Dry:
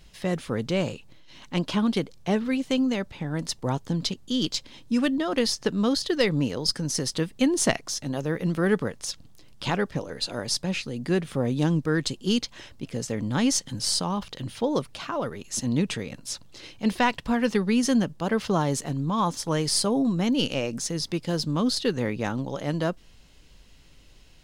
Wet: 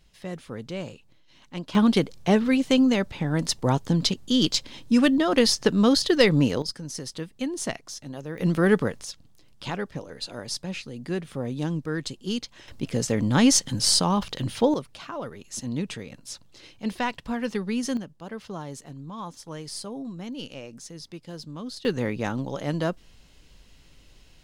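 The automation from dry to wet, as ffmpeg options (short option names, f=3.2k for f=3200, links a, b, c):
-af "asetnsamples=n=441:p=0,asendcmd='1.75 volume volume 4.5dB;6.62 volume volume -7.5dB;8.38 volume volume 3dB;9.03 volume volume -5dB;12.68 volume volume 5dB;14.74 volume volume -5dB;17.97 volume volume -12dB;21.85 volume volume 0dB',volume=-8dB"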